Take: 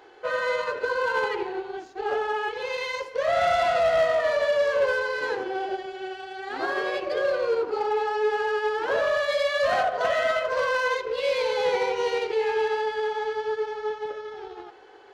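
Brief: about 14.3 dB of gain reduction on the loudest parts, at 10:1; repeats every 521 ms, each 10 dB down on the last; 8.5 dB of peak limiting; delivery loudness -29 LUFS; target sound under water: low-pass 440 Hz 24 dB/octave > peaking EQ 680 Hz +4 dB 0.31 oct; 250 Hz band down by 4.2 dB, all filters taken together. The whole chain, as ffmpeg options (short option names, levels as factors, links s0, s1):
-af "equalizer=f=250:t=o:g=-7,acompressor=threshold=0.0178:ratio=10,alimiter=level_in=3.55:limit=0.0631:level=0:latency=1,volume=0.282,lowpass=f=440:w=0.5412,lowpass=f=440:w=1.3066,equalizer=f=680:t=o:w=0.31:g=4,aecho=1:1:521|1042|1563|2084:0.316|0.101|0.0324|0.0104,volume=10"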